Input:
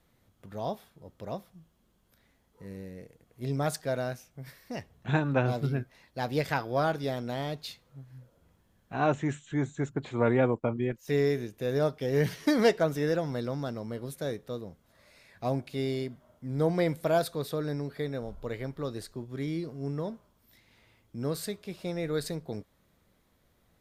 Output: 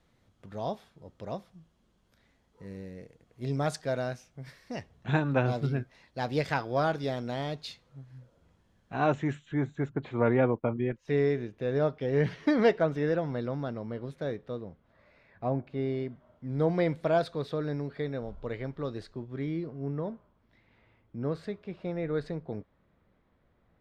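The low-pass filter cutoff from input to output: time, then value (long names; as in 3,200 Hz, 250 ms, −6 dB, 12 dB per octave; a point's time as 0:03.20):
0:08.97 7,000 Hz
0:09.56 2,900 Hz
0:14.47 2,900 Hz
0:15.66 1,500 Hz
0:16.53 3,700 Hz
0:19.05 3,700 Hz
0:19.73 2,100 Hz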